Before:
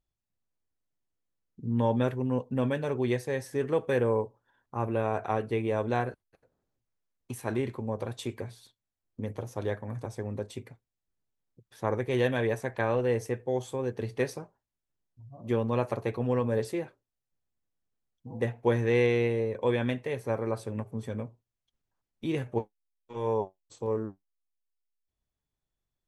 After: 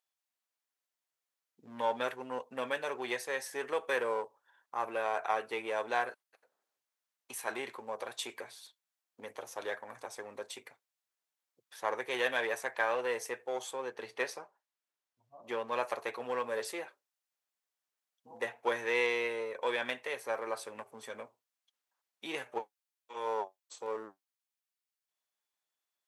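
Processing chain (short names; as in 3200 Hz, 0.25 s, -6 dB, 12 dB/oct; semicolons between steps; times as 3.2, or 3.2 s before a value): 13.71–15.72 high shelf 6000 Hz -8 dB; in parallel at -6 dB: one-sided clip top -30.5 dBFS; on the sum: HPF 810 Hz 12 dB/oct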